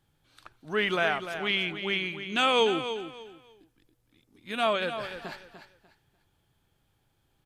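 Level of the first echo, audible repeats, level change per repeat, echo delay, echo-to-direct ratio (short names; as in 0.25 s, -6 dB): -10.0 dB, 3, -12.0 dB, 0.296 s, -9.5 dB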